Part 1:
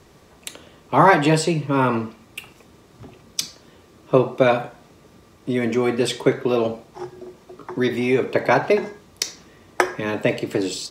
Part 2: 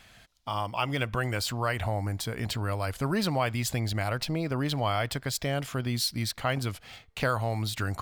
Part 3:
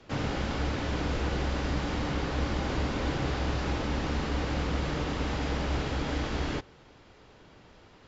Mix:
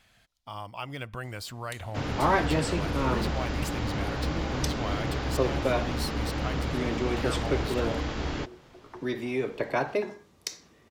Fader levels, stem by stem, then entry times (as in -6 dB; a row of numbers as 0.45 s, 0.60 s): -10.5 dB, -8.0 dB, -0.5 dB; 1.25 s, 0.00 s, 1.85 s